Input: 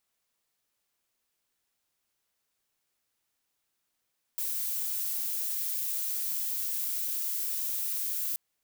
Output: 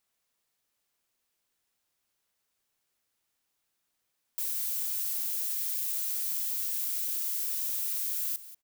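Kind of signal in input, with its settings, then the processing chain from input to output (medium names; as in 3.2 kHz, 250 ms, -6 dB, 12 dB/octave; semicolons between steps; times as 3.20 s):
noise violet, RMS -32 dBFS 3.98 s
delay 186 ms -15.5 dB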